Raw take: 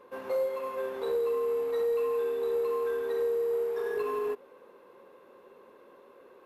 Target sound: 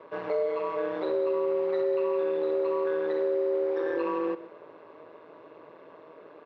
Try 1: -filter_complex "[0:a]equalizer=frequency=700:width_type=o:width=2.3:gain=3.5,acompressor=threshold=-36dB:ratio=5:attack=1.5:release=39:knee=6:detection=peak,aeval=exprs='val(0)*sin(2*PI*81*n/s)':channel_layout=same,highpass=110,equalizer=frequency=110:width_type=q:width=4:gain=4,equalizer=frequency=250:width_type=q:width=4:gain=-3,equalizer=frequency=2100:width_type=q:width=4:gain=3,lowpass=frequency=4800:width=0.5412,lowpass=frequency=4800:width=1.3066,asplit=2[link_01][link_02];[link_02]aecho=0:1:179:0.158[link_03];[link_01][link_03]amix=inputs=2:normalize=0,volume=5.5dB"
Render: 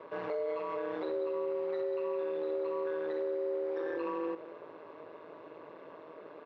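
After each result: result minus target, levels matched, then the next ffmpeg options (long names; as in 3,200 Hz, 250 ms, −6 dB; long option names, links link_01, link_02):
echo 52 ms late; downward compressor: peak gain reduction +7 dB
-filter_complex "[0:a]equalizer=frequency=700:width_type=o:width=2.3:gain=3.5,acompressor=threshold=-36dB:ratio=5:attack=1.5:release=39:knee=6:detection=peak,aeval=exprs='val(0)*sin(2*PI*81*n/s)':channel_layout=same,highpass=110,equalizer=frequency=110:width_type=q:width=4:gain=4,equalizer=frequency=250:width_type=q:width=4:gain=-3,equalizer=frequency=2100:width_type=q:width=4:gain=3,lowpass=frequency=4800:width=0.5412,lowpass=frequency=4800:width=1.3066,asplit=2[link_01][link_02];[link_02]aecho=0:1:127:0.158[link_03];[link_01][link_03]amix=inputs=2:normalize=0,volume=5.5dB"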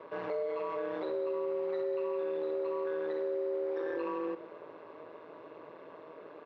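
downward compressor: peak gain reduction +7 dB
-filter_complex "[0:a]equalizer=frequency=700:width_type=o:width=2.3:gain=3.5,acompressor=threshold=-27dB:ratio=5:attack=1.5:release=39:knee=6:detection=peak,aeval=exprs='val(0)*sin(2*PI*81*n/s)':channel_layout=same,highpass=110,equalizer=frequency=110:width_type=q:width=4:gain=4,equalizer=frequency=250:width_type=q:width=4:gain=-3,equalizer=frequency=2100:width_type=q:width=4:gain=3,lowpass=frequency=4800:width=0.5412,lowpass=frequency=4800:width=1.3066,asplit=2[link_01][link_02];[link_02]aecho=0:1:127:0.158[link_03];[link_01][link_03]amix=inputs=2:normalize=0,volume=5.5dB"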